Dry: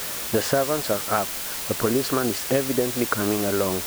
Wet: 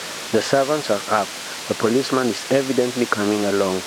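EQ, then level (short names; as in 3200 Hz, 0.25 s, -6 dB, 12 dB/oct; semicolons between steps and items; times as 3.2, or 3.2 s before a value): BPF 150–6400 Hz; +4.5 dB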